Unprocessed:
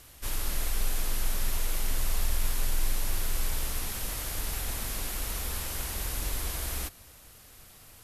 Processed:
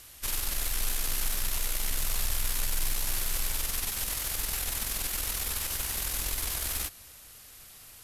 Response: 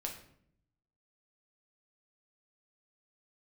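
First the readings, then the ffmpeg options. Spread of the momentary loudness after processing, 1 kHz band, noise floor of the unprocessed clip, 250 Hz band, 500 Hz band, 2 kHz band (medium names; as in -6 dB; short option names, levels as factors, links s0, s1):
11 LU, -0.5 dB, -53 dBFS, -3.5 dB, -2.5 dB, +2.0 dB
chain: -af "aeval=exprs='0.158*(cos(1*acos(clip(val(0)/0.158,-1,1)))-cos(1*PI/2))+0.00891*(cos(8*acos(clip(val(0)/0.158,-1,1)))-cos(8*PI/2))':c=same,tiltshelf=f=1300:g=-4"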